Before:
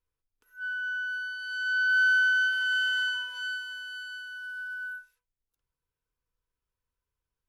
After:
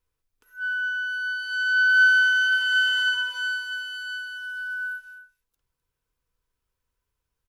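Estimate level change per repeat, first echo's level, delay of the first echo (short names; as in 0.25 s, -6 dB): no steady repeat, -13.0 dB, 0.255 s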